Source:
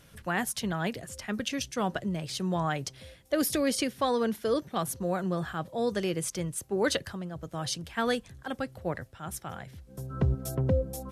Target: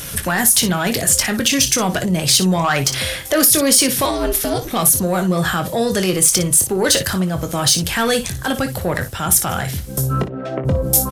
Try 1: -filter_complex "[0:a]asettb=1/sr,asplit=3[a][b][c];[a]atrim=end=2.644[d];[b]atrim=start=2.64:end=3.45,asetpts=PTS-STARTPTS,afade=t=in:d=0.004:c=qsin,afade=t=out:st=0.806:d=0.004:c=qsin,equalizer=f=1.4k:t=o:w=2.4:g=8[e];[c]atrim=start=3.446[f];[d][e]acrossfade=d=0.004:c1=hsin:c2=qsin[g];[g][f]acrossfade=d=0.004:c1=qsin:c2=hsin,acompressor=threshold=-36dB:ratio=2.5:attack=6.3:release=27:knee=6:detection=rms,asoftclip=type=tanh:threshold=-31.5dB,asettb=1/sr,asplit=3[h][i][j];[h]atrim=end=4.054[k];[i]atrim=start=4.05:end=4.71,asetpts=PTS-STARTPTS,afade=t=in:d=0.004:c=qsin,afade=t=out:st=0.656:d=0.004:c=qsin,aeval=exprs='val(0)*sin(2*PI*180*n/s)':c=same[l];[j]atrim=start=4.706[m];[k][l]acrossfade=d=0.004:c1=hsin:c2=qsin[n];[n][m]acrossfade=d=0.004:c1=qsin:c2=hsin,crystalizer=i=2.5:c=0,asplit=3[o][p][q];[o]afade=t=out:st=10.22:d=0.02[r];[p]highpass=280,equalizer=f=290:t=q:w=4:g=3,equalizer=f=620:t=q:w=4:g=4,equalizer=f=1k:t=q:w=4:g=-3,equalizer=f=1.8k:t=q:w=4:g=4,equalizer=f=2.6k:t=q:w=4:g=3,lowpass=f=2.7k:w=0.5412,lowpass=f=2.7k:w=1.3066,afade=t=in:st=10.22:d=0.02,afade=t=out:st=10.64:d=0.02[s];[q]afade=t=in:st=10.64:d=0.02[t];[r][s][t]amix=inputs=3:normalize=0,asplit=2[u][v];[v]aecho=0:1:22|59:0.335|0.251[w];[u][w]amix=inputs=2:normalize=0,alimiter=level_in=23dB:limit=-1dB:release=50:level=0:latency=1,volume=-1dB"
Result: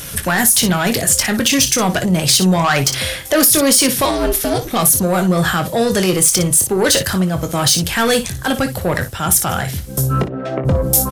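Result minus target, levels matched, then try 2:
compressor: peak gain reduction -4 dB
-filter_complex "[0:a]asettb=1/sr,asplit=3[a][b][c];[a]atrim=end=2.644[d];[b]atrim=start=2.64:end=3.45,asetpts=PTS-STARTPTS,afade=t=in:d=0.004:c=qsin,afade=t=out:st=0.806:d=0.004:c=qsin,equalizer=f=1.4k:t=o:w=2.4:g=8[e];[c]atrim=start=3.446[f];[d][e]acrossfade=d=0.004:c1=hsin:c2=qsin[g];[g][f]acrossfade=d=0.004:c1=qsin:c2=hsin,acompressor=threshold=-42.5dB:ratio=2.5:attack=6.3:release=27:knee=6:detection=rms,asoftclip=type=tanh:threshold=-31.5dB,asettb=1/sr,asplit=3[h][i][j];[h]atrim=end=4.054[k];[i]atrim=start=4.05:end=4.71,asetpts=PTS-STARTPTS,afade=t=in:d=0.004:c=qsin,afade=t=out:st=0.656:d=0.004:c=qsin,aeval=exprs='val(0)*sin(2*PI*180*n/s)':c=same[l];[j]atrim=start=4.706[m];[k][l]acrossfade=d=0.004:c1=hsin:c2=qsin[n];[n][m]acrossfade=d=0.004:c1=qsin:c2=hsin,crystalizer=i=2.5:c=0,asplit=3[o][p][q];[o]afade=t=out:st=10.22:d=0.02[r];[p]highpass=280,equalizer=f=290:t=q:w=4:g=3,equalizer=f=620:t=q:w=4:g=4,equalizer=f=1k:t=q:w=4:g=-3,equalizer=f=1.8k:t=q:w=4:g=4,equalizer=f=2.6k:t=q:w=4:g=3,lowpass=f=2.7k:w=0.5412,lowpass=f=2.7k:w=1.3066,afade=t=in:st=10.22:d=0.02,afade=t=out:st=10.64:d=0.02[s];[q]afade=t=in:st=10.64:d=0.02[t];[r][s][t]amix=inputs=3:normalize=0,asplit=2[u][v];[v]aecho=0:1:22|59:0.335|0.251[w];[u][w]amix=inputs=2:normalize=0,alimiter=level_in=23dB:limit=-1dB:release=50:level=0:latency=1,volume=-1dB"

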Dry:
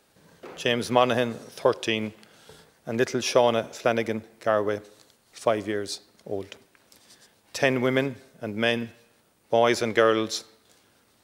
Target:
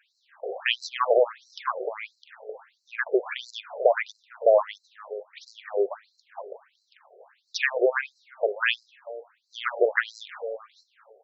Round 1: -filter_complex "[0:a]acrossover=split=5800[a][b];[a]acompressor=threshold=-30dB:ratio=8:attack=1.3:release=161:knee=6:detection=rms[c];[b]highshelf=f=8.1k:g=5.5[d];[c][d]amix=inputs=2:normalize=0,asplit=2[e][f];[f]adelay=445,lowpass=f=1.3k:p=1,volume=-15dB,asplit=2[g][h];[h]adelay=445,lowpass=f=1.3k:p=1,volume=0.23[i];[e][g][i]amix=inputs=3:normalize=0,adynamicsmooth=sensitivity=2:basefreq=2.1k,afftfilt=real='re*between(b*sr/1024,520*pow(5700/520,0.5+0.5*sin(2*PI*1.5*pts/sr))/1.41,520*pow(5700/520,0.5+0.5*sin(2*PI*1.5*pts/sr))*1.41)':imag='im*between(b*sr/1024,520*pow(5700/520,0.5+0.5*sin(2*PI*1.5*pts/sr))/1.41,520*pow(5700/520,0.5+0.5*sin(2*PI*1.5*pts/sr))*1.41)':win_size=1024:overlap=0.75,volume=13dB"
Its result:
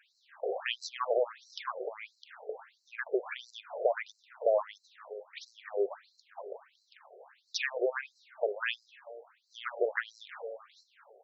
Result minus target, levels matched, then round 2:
compressor: peak gain reduction +9 dB
-filter_complex "[0:a]acrossover=split=5800[a][b];[a]acompressor=threshold=-20dB:ratio=8:attack=1.3:release=161:knee=6:detection=rms[c];[b]highshelf=f=8.1k:g=5.5[d];[c][d]amix=inputs=2:normalize=0,asplit=2[e][f];[f]adelay=445,lowpass=f=1.3k:p=1,volume=-15dB,asplit=2[g][h];[h]adelay=445,lowpass=f=1.3k:p=1,volume=0.23[i];[e][g][i]amix=inputs=3:normalize=0,adynamicsmooth=sensitivity=2:basefreq=2.1k,afftfilt=real='re*between(b*sr/1024,520*pow(5700/520,0.5+0.5*sin(2*PI*1.5*pts/sr))/1.41,520*pow(5700/520,0.5+0.5*sin(2*PI*1.5*pts/sr))*1.41)':imag='im*between(b*sr/1024,520*pow(5700/520,0.5+0.5*sin(2*PI*1.5*pts/sr))/1.41,520*pow(5700/520,0.5+0.5*sin(2*PI*1.5*pts/sr))*1.41)':win_size=1024:overlap=0.75,volume=13dB"

